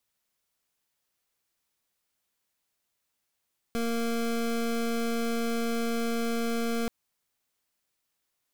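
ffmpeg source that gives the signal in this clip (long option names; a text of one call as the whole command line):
ffmpeg -f lavfi -i "aevalsrc='0.0376*(2*lt(mod(232*t,1),0.25)-1)':duration=3.13:sample_rate=44100" out.wav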